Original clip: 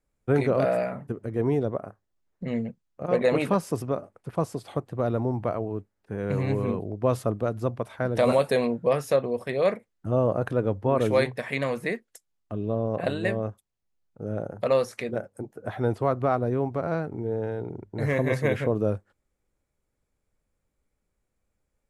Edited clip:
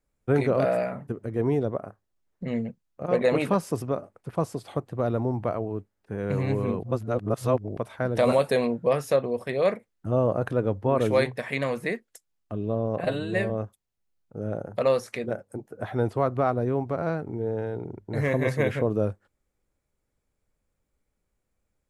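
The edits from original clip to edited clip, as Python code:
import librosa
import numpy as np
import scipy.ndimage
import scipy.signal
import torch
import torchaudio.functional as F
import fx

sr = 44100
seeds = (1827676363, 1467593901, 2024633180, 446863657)

y = fx.edit(x, sr, fx.reverse_span(start_s=6.83, length_s=0.94),
    fx.stretch_span(start_s=13.05, length_s=0.3, factor=1.5), tone=tone)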